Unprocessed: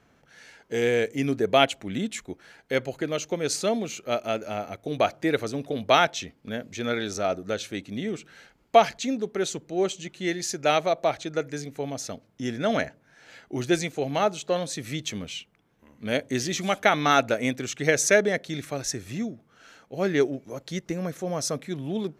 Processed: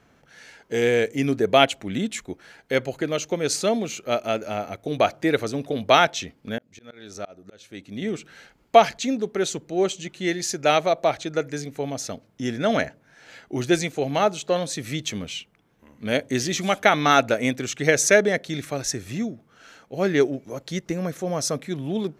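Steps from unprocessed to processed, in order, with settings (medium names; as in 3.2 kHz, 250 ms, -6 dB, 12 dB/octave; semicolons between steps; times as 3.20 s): 6.58–8.02 s: slow attack 743 ms; trim +3 dB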